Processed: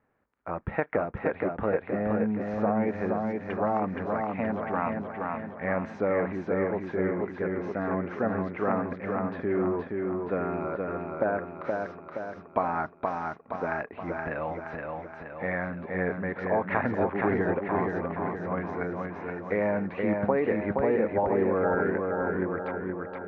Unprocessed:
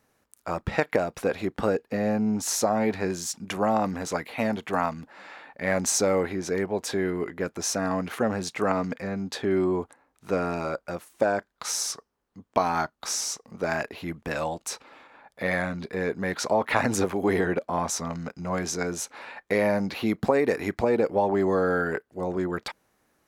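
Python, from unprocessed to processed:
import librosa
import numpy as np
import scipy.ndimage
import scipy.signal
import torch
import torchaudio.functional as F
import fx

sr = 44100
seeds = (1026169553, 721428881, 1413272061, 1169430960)

p1 = scipy.signal.sosfilt(scipy.signal.butter(4, 2100.0, 'lowpass', fs=sr, output='sos'), x)
p2 = p1 + fx.echo_feedback(p1, sr, ms=472, feedback_pct=54, wet_db=-3.5, dry=0)
y = p2 * 10.0 ** (-3.5 / 20.0)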